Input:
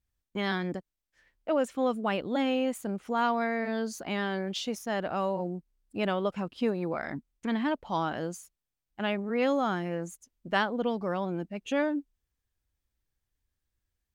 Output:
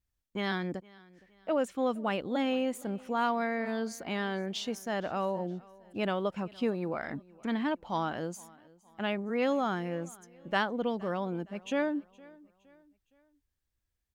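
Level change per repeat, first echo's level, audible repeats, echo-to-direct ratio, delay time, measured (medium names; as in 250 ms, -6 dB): -7.5 dB, -23.5 dB, 2, -22.5 dB, 465 ms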